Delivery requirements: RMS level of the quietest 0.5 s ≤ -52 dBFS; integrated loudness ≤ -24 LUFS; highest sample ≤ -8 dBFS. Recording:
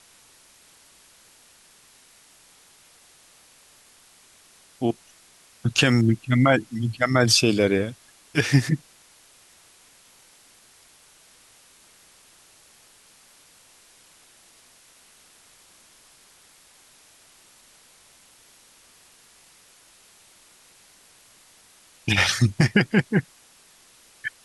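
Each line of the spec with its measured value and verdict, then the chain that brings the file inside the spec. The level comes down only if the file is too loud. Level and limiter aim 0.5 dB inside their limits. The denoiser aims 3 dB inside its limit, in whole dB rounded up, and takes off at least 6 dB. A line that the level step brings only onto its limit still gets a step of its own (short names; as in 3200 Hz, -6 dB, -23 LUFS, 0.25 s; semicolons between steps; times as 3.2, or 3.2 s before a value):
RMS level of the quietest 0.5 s -55 dBFS: OK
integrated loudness -22.0 LUFS: fail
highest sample -5.5 dBFS: fail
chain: gain -2.5 dB; limiter -8.5 dBFS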